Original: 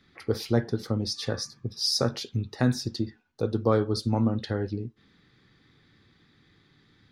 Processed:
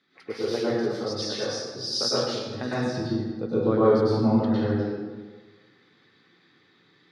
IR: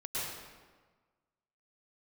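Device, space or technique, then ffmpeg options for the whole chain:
supermarket ceiling speaker: -filter_complex "[0:a]asettb=1/sr,asplit=3[a][b][c];[a]atrim=end=2.744[d];[b]atrim=start=2.74:end=4.62,asetpts=PTS-STARTPTS,afade=t=in:d=0.004:c=qsin,afade=t=out:st=1.876:d=0.004:c=qsin,bass=f=250:g=12,treble=f=4k:g=-10[e];[c]atrim=start=4.616[f];[d][e]acrossfade=d=0.004:c1=hsin:c2=qsin[g];[g][f]acrossfade=d=0.004:c1=qsin:c2=hsin,highpass=270,lowpass=6.5k[h];[1:a]atrim=start_sample=2205[i];[h][i]afir=irnorm=-1:irlink=0"

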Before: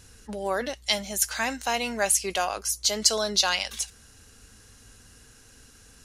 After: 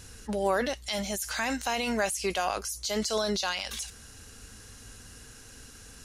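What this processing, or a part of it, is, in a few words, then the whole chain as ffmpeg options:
de-esser from a sidechain: -filter_complex "[0:a]asplit=2[a][b];[b]highpass=f=5.1k:p=1,apad=whole_len=266414[c];[a][c]sidechaincompress=threshold=-40dB:ratio=3:attack=1.4:release=27,volume=4dB"

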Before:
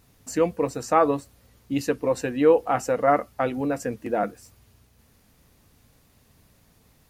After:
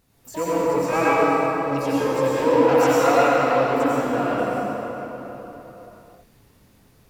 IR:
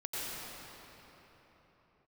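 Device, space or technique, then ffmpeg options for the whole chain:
shimmer-style reverb: -filter_complex "[0:a]asettb=1/sr,asplit=3[a][b][c];[a]atrim=end=2.714[d];[b]atrim=start=2.71:end=3.11,asetpts=PTS-STARTPTS,afade=t=in:d=0.004:c=qsin,afade=t=out:st=0.396:d=0.004:c=qsin,equalizer=f=4.2k:w=0.72:g=12[e];[c]atrim=start=3.106[f];[d][e]acrossfade=d=0.004:c1=hsin:c2=qsin[g];[g][f]acrossfade=d=0.004:c1=qsin:c2=hsin,asplit=2[h][i];[i]asetrate=88200,aresample=44100,atempo=0.5,volume=-7dB[j];[h][j]amix=inputs=2:normalize=0[k];[1:a]atrim=start_sample=2205[l];[k][l]afir=irnorm=-1:irlink=0,volume=-1.5dB"

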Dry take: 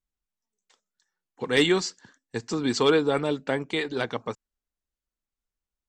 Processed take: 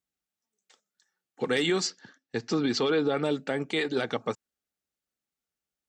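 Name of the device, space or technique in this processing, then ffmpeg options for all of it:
PA system with an anti-feedback notch: -filter_complex "[0:a]highpass=120,asuperstop=centerf=1000:order=4:qfactor=6.4,alimiter=limit=-19.5dB:level=0:latency=1:release=75,asettb=1/sr,asplit=3[a][b][c];[a]atrim=end=1.874[d];[b]atrim=start=1.87:end=3.23,asetpts=PTS-STARTPTS,afade=t=in:d=0.004:c=qsin,afade=t=out:st=1.356:d=0.004:c=qsin,lowpass=f=5.7k:w=0.5412,lowpass=f=5.7k:w=1.3066[e];[c]atrim=start=3.226[f];[d][e]acrossfade=d=0.004:c1=hsin:c2=qsin[g];[g][f]acrossfade=d=0.004:c1=qsin:c2=hsin,volume=2.5dB"

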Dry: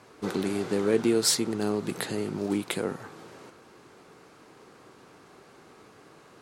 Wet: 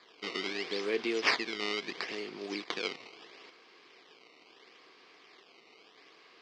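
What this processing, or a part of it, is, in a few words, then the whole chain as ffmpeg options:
circuit-bent sampling toy: -af "acrusher=samples=15:mix=1:aa=0.000001:lfo=1:lforange=24:lforate=0.75,highpass=560,equalizer=f=580:t=q:w=4:g=-9,equalizer=f=860:t=q:w=4:g=-9,equalizer=f=1.4k:t=q:w=4:g=-9,equalizer=f=2.2k:t=q:w=4:g=5,equalizer=f=3.1k:t=q:w=4:g=4,equalizer=f=4.9k:t=q:w=4:g=7,lowpass=f=5k:w=0.5412,lowpass=f=5k:w=1.3066"

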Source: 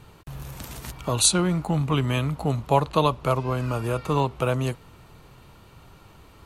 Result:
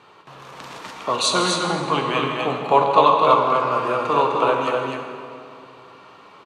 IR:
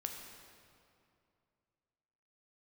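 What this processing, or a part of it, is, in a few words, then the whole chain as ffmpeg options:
station announcement: -filter_complex "[0:a]highpass=380,lowpass=4.4k,equalizer=f=1.1k:t=o:w=0.27:g=6.5,aecho=1:1:160.3|253.6:0.251|0.631[a];[1:a]atrim=start_sample=2205[b];[a][b]afir=irnorm=-1:irlink=0,volume=6.5dB"

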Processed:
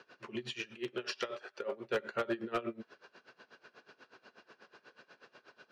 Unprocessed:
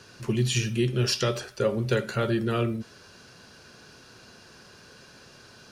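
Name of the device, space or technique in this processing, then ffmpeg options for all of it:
helicopter radio: -filter_complex "[0:a]highpass=370,lowpass=2.6k,aeval=exprs='val(0)*pow(10,-21*(0.5-0.5*cos(2*PI*8.2*n/s))/20)':c=same,asoftclip=type=hard:threshold=-26dB,asettb=1/sr,asplit=3[a][b][c];[a]atrim=end=0.544[d];[b]atrim=start=0.54:end=1.9,asetpts=PTS-STARTPTS,afade=t=in:d=0.004:c=qsin,afade=t=out:st=1.356:d=0.004:c=qsin,lowshelf=f=230:g=-11[e];[c]atrim=start=1.896[f];[d][e]acrossfade=d=0.004:c1=hsin:c2=qsin[g];[g][f]acrossfade=d=0.004:c1=qsin:c2=hsin"

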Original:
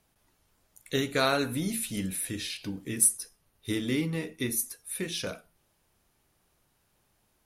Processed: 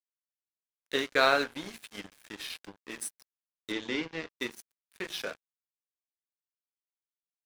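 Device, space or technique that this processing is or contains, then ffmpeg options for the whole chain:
pocket radio on a weak battery: -filter_complex "[0:a]highpass=400,lowpass=4.4k,aeval=exprs='sgn(val(0))*max(abs(val(0))-0.00841,0)':c=same,equalizer=f=1.6k:t=o:w=0.21:g=4.5,asettb=1/sr,asplit=3[a][b][c];[a]atrim=end=3.724[d];[b]atrim=start=3.72:end=4.33,asetpts=PTS-STARTPTS,afade=t=in:d=0.004:c=qsin,afade=t=out:st=0.606:d=0.004:c=qsin,lowpass=f=6.7k:w=0.5412,lowpass=f=6.7k:w=1.3066[e];[c]atrim=start=4.326[f];[d][e]acrossfade=d=0.004:c1=hsin:c2=qsin[g];[g][f]acrossfade=d=0.004:c1=qsin:c2=hsin,volume=3.5dB"

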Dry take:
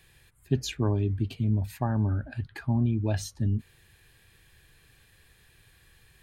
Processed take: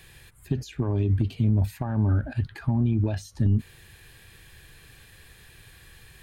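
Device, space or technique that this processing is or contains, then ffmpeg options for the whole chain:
de-esser from a sidechain: -filter_complex "[0:a]asplit=2[a][b];[b]highpass=f=4.6k:p=1,apad=whole_len=274370[c];[a][c]sidechaincompress=threshold=-54dB:ratio=5:attack=2.6:release=66,volume=8.5dB"

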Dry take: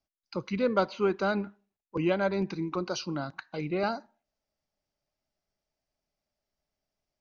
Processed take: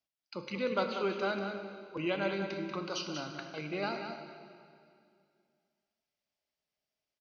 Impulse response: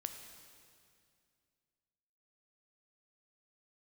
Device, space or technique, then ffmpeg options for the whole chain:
PA in a hall: -filter_complex "[0:a]highpass=f=170:p=1,equalizer=f=3k:t=o:w=1.3:g=7.5,aecho=1:1:188:0.422[a];[1:a]atrim=start_sample=2205[b];[a][b]afir=irnorm=-1:irlink=0,volume=-4dB"

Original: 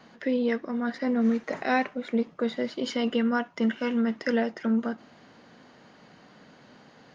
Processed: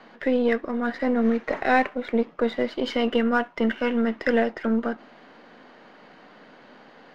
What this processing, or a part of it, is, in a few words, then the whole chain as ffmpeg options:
crystal radio: -af "highpass=270,lowpass=3.3k,aeval=exprs='if(lt(val(0),0),0.708*val(0),val(0))':c=same,volume=7dB"

